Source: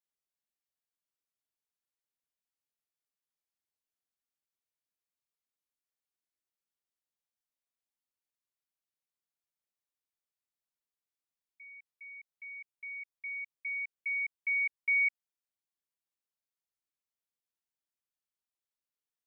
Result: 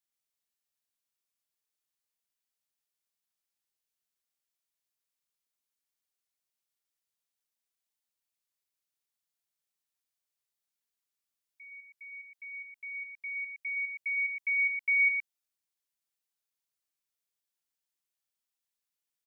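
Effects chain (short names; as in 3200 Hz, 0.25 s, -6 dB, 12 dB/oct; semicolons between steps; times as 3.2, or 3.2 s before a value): high shelf 2000 Hz +7.5 dB; echo 0.116 s -5 dB; gain -3 dB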